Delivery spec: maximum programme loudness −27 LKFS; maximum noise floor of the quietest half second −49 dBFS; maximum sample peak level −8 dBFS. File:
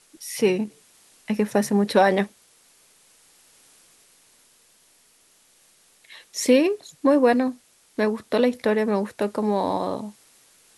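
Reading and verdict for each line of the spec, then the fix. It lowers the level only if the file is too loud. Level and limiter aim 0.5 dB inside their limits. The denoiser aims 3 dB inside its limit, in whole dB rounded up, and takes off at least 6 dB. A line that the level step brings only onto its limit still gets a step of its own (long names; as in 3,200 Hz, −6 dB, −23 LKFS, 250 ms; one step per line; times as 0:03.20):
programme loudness −22.5 LKFS: out of spec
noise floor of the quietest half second −59 dBFS: in spec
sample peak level −5.0 dBFS: out of spec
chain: level −5 dB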